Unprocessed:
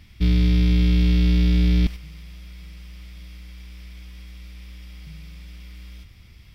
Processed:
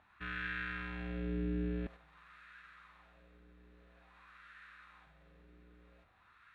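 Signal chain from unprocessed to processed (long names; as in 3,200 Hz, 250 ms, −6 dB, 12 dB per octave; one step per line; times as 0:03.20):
formants moved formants −5 semitones
LFO wah 0.49 Hz 380–1,500 Hz, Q 2.7
level +1.5 dB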